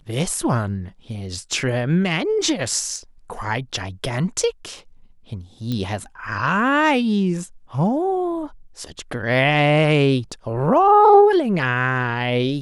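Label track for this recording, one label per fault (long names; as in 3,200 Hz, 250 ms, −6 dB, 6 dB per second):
5.720000	5.720000	click −14 dBFS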